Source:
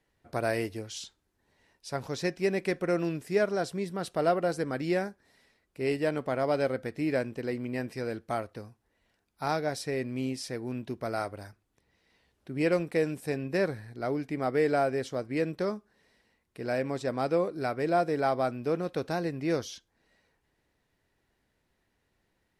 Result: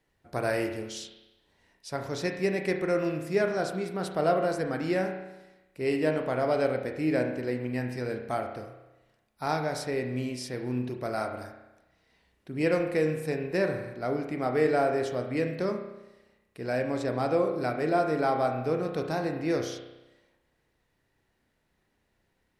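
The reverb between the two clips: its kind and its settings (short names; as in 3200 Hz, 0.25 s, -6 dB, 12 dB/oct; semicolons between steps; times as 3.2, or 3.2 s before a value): spring tank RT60 1 s, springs 32 ms, chirp 45 ms, DRR 4 dB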